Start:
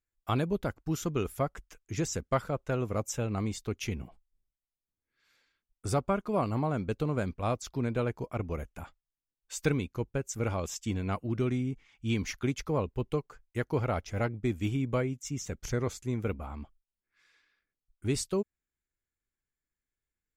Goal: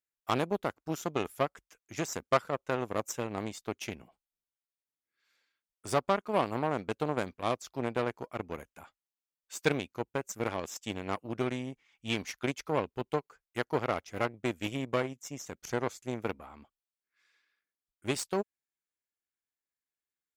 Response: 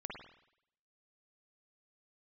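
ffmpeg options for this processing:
-af "aeval=exprs='0.211*(cos(1*acos(clip(val(0)/0.211,-1,1)))-cos(1*PI/2))+0.0188*(cos(7*acos(clip(val(0)/0.211,-1,1)))-cos(7*PI/2))+0.00841*(cos(8*acos(clip(val(0)/0.211,-1,1)))-cos(8*PI/2))':c=same,highpass=f=390:p=1,volume=4dB"

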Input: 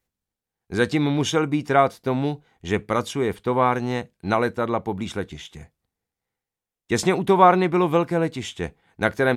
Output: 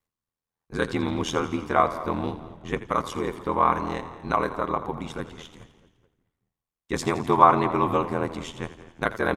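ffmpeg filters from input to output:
-filter_complex "[0:a]asplit=2[a][b];[b]adelay=215,lowpass=f=2.5k:p=1,volume=-17dB,asplit=2[c][d];[d]adelay=215,lowpass=f=2.5k:p=1,volume=0.51,asplit=2[e][f];[f]adelay=215,lowpass=f=2.5k:p=1,volume=0.51,asplit=2[g][h];[h]adelay=215,lowpass=f=2.5k:p=1,volume=0.51[i];[c][e][g][i]amix=inputs=4:normalize=0[j];[a][j]amix=inputs=2:normalize=0,aeval=exprs='val(0)*sin(2*PI*41*n/s)':c=same,equalizer=f=1.1k:w=3.8:g=9.5,asplit=2[k][l];[l]asplit=7[m][n][o][p][q][r][s];[m]adelay=84,afreqshift=-40,volume=-14dB[t];[n]adelay=168,afreqshift=-80,volume=-17.7dB[u];[o]adelay=252,afreqshift=-120,volume=-21.5dB[v];[p]adelay=336,afreqshift=-160,volume=-25.2dB[w];[q]adelay=420,afreqshift=-200,volume=-29dB[x];[r]adelay=504,afreqshift=-240,volume=-32.7dB[y];[s]adelay=588,afreqshift=-280,volume=-36.5dB[z];[t][u][v][w][x][y][z]amix=inputs=7:normalize=0[aa];[k][aa]amix=inputs=2:normalize=0,volume=-3dB"

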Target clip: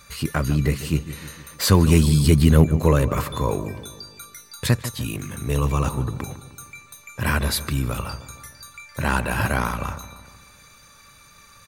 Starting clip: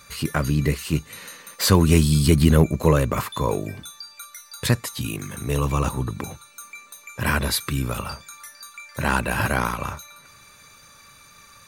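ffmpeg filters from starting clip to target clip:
-filter_complex "[0:a]lowshelf=f=93:g=6,asplit=2[a][b];[b]adelay=153,lowpass=f=1.7k:p=1,volume=-13dB,asplit=2[c][d];[d]adelay=153,lowpass=f=1.7k:p=1,volume=0.55,asplit=2[e][f];[f]adelay=153,lowpass=f=1.7k:p=1,volume=0.55,asplit=2[g][h];[h]adelay=153,lowpass=f=1.7k:p=1,volume=0.55,asplit=2[i][j];[j]adelay=153,lowpass=f=1.7k:p=1,volume=0.55,asplit=2[k][l];[l]adelay=153,lowpass=f=1.7k:p=1,volume=0.55[m];[a][c][e][g][i][k][m]amix=inputs=7:normalize=0,volume=-1dB"

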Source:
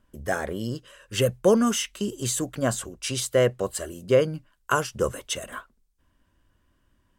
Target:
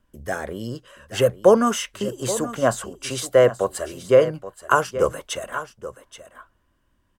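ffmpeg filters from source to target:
-filter_complex "[0:a]acrossover=split=490|1500[a][b][c];[b]dynaudnorm=f=160:g=11:m=11dB[d];[a][d][c]amix=inputs=3:normalize=0,aecho=1:1:827:0.211,volume=-1dB"

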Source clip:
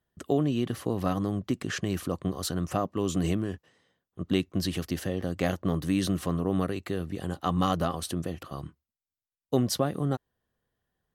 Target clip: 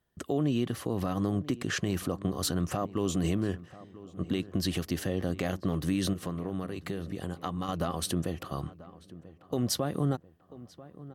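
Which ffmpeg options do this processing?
-filter_complex "[0:a]asettb=1/sr,asplit=3[a][b][c];[a]atrim=end=6.134[d];[b]atrim=start=6.13:end=7.69,asetpts=PTS-STARTPTS,afade=t=in:d=0.004:c=qsin,afade=t=out:st=1.556:d=0.004:c=qsin,acompressor=threshold=-34dB:ratio=5[e];[c]atrim=start=7.686[f];[d][e]acrossfade=d=0.004:c1=hsin:c2=qsin[g];[g][f]acrossfade=d=0.004:c1=qsin:c2=hsin,alimiter=limit=-21dB:level=0:latency=1:release=176,asplit=2[h][i];[i]adelay=989,lowpass=f=1.9k:p=1,volume=-17.5dB,asplit=2[j][k];[k]adelay=989,lowpass=f=1.9k:p=1,volume=0.46,asplit=2[l][m];[m]adelay=989,lowpass=f=1.9k:p=1,volume=0.46,asplit=2[n][o];[o]adelay=989,lowpass=f=1.9k:p=1,volume=0.46[p];[h][j][l][n][p]amix=inputs=5:normalize=0,volume=2.5dB"

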